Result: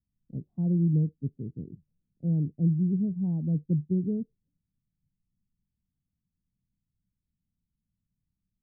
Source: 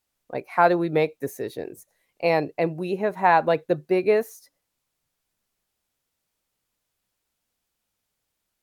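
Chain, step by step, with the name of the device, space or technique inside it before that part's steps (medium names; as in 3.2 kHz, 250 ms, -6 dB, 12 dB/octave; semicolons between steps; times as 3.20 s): the neighbour's flat through the wall (low-pass 200 Hz 24 dB/octave; peaking EQ 180 Hz +4 dB); trim +6.5 dB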